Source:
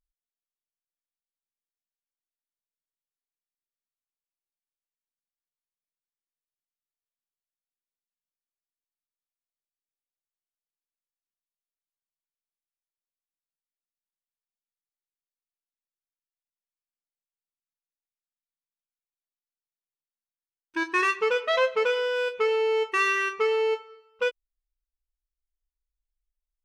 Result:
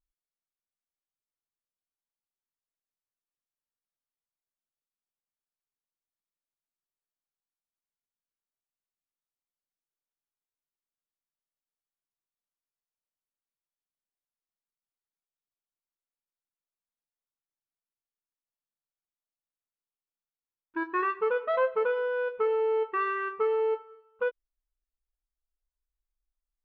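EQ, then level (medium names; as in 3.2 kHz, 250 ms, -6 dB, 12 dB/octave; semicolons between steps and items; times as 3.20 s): distance through air 410 m; resonant high shelf 1.8 kHz -7 dB, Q 1.5; -1.5 dB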